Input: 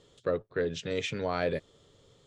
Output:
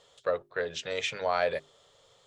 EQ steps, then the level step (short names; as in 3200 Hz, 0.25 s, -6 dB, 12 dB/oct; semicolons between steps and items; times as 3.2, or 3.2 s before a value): resonant low shelf 450 Hz -12 dB, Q 1.5; notches 50/100/150/200/250/300/350/400 Hz; +3.0 dB